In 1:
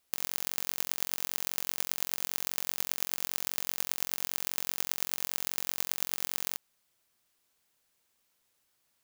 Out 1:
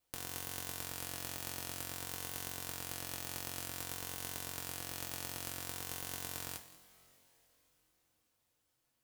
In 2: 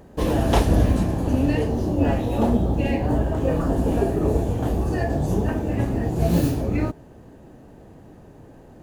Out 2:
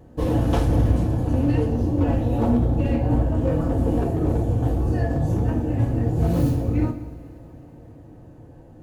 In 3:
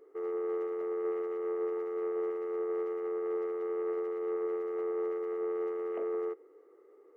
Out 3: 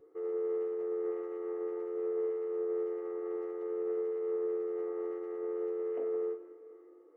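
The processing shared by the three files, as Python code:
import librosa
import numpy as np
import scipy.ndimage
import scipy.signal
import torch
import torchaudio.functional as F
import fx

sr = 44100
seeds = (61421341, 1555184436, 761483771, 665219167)

p1 = fx.tilt_shelf(x, sr, db=4.0, hz=720.0)
p2 = fx.vibrato(p1, sr, rate_hz=0.54, depth_cents=5.6)
p3 = np.clip(p2, -10.0 ** (-12.0 / 20.0), 10.0 ** (-12.0 / 20.0))
p4 = fx.notch_comb(p3, sr, f0_hz=200.0)
p5 = p4 + fx.echo_single(p4, sr, ms=188, db=-17.5, dry=0)
p6 = fx.rev_double_slope(p5, sr, seeds[0], early_s=0.33, late_s=4.1, knee_db=-20, drr_db=5.0)
y = p6 * 10.0 ** (-3.0 / 20.0)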